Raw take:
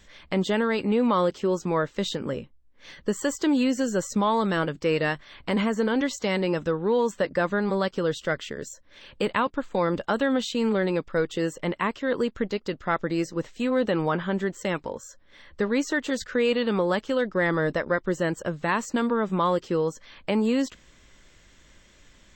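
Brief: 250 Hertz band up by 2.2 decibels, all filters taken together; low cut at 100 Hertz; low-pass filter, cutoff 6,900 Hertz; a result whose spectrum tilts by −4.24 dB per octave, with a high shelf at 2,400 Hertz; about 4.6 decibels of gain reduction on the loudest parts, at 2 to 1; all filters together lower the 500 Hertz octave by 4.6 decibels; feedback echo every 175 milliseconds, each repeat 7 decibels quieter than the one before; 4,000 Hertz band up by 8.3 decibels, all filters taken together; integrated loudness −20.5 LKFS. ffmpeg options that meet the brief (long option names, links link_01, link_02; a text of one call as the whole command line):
ffmpeg -i in.wav -af "highpass=100,lowpass=6900,equalizer=frequency=250:width_type=o:gain=4.5,equalizer=frequency=500:width_type=o:gain=-7,highshelf=frequency=2400:gain=6.5,equalizer=frequency=4000:width_type=o:gain=5.5,acompressor=threshold=-26dB:ratio=2,aecho=1:1:175|350|525|700|875:0.447|0.201|0.0905|0.0407|0.0183,volume=7dB" out.wav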